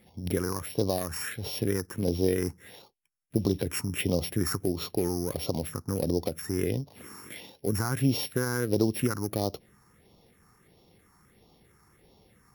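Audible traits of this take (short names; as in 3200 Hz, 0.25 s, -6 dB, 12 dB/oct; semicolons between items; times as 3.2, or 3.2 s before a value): a buzz of ramps at a fixed pitch in blocks of 8 samples; phasing stages 4, 1.5 Hz, lowest notch 560–1600 Hz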